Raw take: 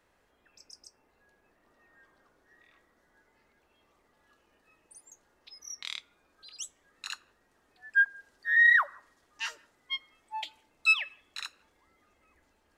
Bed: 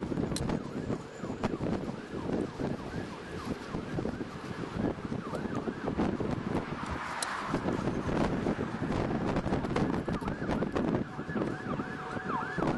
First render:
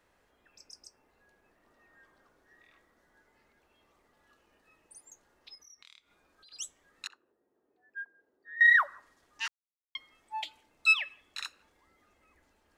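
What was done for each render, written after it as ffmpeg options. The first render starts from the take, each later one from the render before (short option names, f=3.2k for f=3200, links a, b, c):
-filter_complex "[0:a]asettb=1/sr,asplit=3[a][b][c];[a]atrim=end=5.554[d];[b]atrim=start=5.55:end=6.52,asetpts=PTS-STARTPTS,afade=t=in:d=0.004:c=qsin,afade=t=out:st=0.966:d=0.004:c=qsin,acompressor=threshold=-58dB:ratio=3:attack=3.2:release=140:knee=1:detection=peak[e];[c]atrim=start=6.516[f];[d][e]acrossfade=d=0.004:c1=hsin:c2=qsin[g];[g][f]acrossfade=d=0.004:c1=qsin:c2=hsin,asettb=1/sr,asplit=3[h][i][j];[h]atrim=end=7.074[k];[i]atrim=start=7.07:end=8.61,asetpts=PTS-STARTPTS,afade=t=in:d=0.004:c=qsin,afade=t=out:st=1.536:d=0.004:c=qsin,bandpass=f=380:t=q:w=1.9[l];[j]atrim=start=8.606[m];[k][l]acrossfade=d=0.004:c1=hsin:c2=qsin[n];[n][m]acrossfade=d=0.004:c1=qsin:c2=hsin,asplit=3[o][p][q];[o]atrim=end=9.48,asetpts=PTS-STARTPTS,afade=t=out:st=9.476:d=0.004:c=hsin[r];[p]atrim=start=9.48:end=9.95,asetpts=PTS-STARTPTS,volume=0[s];[q]atrim=start=9.95,asetpts=PTS-STARTPTS,afade=t=in:d=0.004:c=hsin[t];[r][s][t]concat=n=3:v=0:a=1"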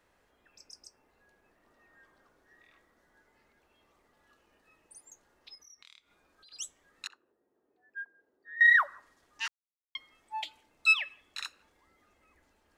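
-af anull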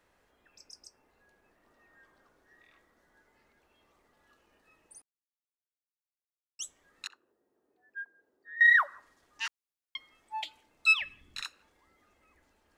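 -filter_complex "[0:a]asettb=1/sr,asplit=3[a][b][c];[a]atrim=end=8.534[d];[b]atrim=start=8.53:end=8.94,asetpts=PTS-STARTPTS,afade=t=in:d=0.004:c=qsin,afade=t=out:st=0.406:d=0.004:c=qsin,highpass=f=130:p=1[e];[c]atrim=start=8.936[f];[d][e]acrossfade=d=0.004:c1=hsin:c2=qsin[g];[g][f]acrossfade=d=0.004:c1=qsin:c2=hsin,asplit=3[h][i][j];[h]afade=t=out:st=10.99:d=0.02[k];[i]asubboost=boost=7:cutoff=230,afade=t=in:st=10.99:d=0.02,afade=t=out:st=11.4:d=0.02[l];[j]afade=t=in:st=11.4:d=0.02[m];[k][l][m]amix=inputs=3:normalize=0,asplit=3[n][o][p];[n]atrim=end=5.02,asetpts=PTS-STARTPTS,afade=t=out:st=5.016:d=0.004:c=hsin[q];[o]atrim=start=5.02:end=6.59,asetpts=PTS-STARTPTS,volume=0[r];[p]atrim=start=6.59,asetpts=PTS-STARTPTS,afade=t=in:d=0.004:c=hsin[s];[q][r][s]concat=n=3:v=0:a=1"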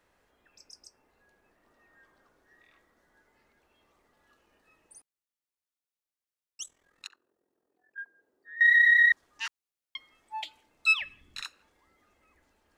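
-filter_complex "[0:a]asettb=1/sr,asplit=3[a][b][c];[a]atrim=end=6.634[d];[b]atrim=start=6.63:end=7.98,asetpts=PTS-STARTPTS,afade=t=in:d=0.004:c=qsin,afade=t=out:st=1.346:d=0.004:c=qsin,tremolo=f=42:d=0.75[e];[c]atrim=start=7.976[f];[d][e]acrossfade=d=0.004:c1=hsin:c2=qsin[g];[g][f]acrossfade=d=0.004:c1=qsin:c2=hsin,asplit=5[h][i][j][k][l];[h]atrim=end=8.762[m];[i]atrim=start=8.638:end=8.762[n];[j]atrim=start=8.638:end=8.762[o];[k]atrim=start=8.638:end=8.762[p];[l]atrim=start=9.118[q];[m][n]acrossfade=d=0.004:c1=hsin:c2=hsin[r];[r][o]acrossfade=d=0.004:c1=hsin:c2=hsin[s];[s][p]acrossfade=d=0.004:c1=hsin:c2=hsin[t];[t][q]acrossfade=d=0.004:c1=hsin:c2=hsin"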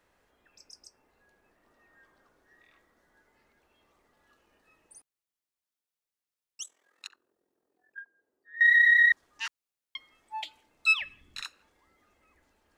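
-filter_complex "[0:a]asettb=1/sr,asplit=3[a][b][c];[a]atrim=end=6.614[d];[b]atrim=start=6.61:end=7.05,asetpts=PTS-STARTPTS,afade=t=in:d=0.004:c=qsin,afade=t=out:st=0.436:d=0.004:c=qsin,highpass=360[e];[c]atrim=start=7.046[f];[d][e]acrossfade=d=0.004:c1=hsin:c2=qsin[g];[g][f]acrossfade=d=0.004:c1=qsin:c2=hsin,asplit=3[h][i][j];[h]atrim=end=7.992[k];[i]atrim=start=7.988:end=8.542,asetpts=PTS-STARTPTS,volume=-6dB[l];[j]atrim=start=8.538[m];[k][l]acrossfade=d=0.004:c1=hsin:c2=hsin[n];[n][m]acrossfade=d=0.004:c1=hsin:c2=hsin"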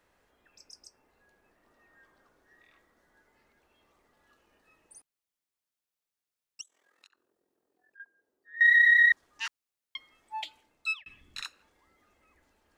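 -filter_complex "[0:a]asettb=1/sr,asplit=3[a][b][c];[a]atrim=end=6.614[d];[b]atrim=start=6.61:end=8,asetpts=PTS-STARTPTS,afade=t=in:d=0.004:c=qsin,afade=t=out:st=1.386:d=0.004:c=qsin,acompressor=threshold=-58dB:ratio=4:attack=3.2:release=140:knee=1:detection=peak[e];[c]atrim=start=7.996[f];[d][e]acrossfade=d=0.004:c1=hsin:c2=qsin[g];[g][f]acrossfade=d=0.004:c1=qsin:c2=hsin,asplit=2[h][i];[h]atrim=end=11.06,asetpts=PTS-STARTPTS,afade=t=out:st=10.42:d=0.64:c=qsin[j];[i]atrim=start=11.06,asetpts=PTS-STARTPTS,afade=t=in:d=0.004:c=hsin[k];[j][k]concat=n=2:v=0:a=1"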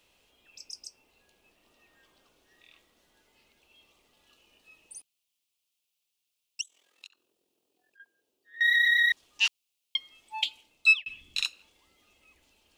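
-af "highshelf=f=2.2k:t=q:w=3:g=7.5"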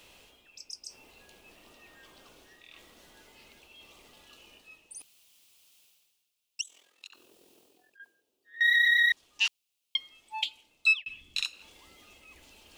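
-af "alimiter=limit=-15dB:level=0:latency=1:release=264,areverse,acompressor=mode=upward:threshold=-45dB:ratio=2.5,areverse"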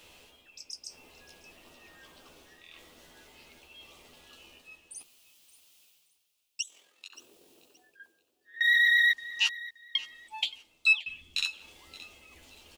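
-filter_complex "[0:a]asplit=2[a][b];[b]adelay=12,volume=-6.5dB[c];[a][c]amix=inputs=2:normalize=0,aecho=1:1:574|1148:0.126|0.0315"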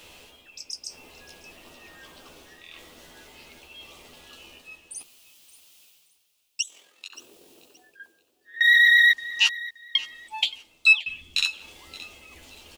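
-af "volume=6.5dB"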